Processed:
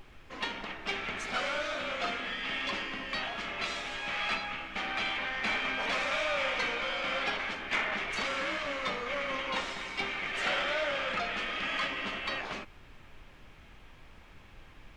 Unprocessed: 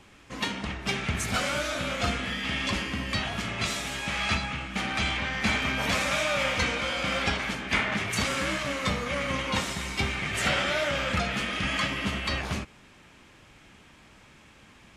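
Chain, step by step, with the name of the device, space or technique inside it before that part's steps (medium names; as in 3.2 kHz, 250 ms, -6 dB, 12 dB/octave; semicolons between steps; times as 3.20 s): aircraft cabin announcement (band-pass 360–4000 Hz; saturation -18.5 dBFS, distortion -24 dB; brown noise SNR 17 dB); trim -2.5 dB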